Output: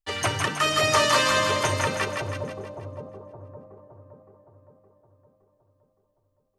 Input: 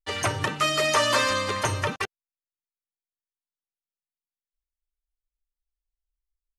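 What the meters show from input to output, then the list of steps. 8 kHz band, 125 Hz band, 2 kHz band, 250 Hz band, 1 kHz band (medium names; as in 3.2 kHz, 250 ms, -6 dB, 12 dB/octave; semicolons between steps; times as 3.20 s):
+2.0 dB, +2.0 dB, +2.0 dB, +2.0 dB, +2.0 dB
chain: two-band feedback delay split 760 Hz, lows 566 ms, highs 160 ms, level -3.5 dB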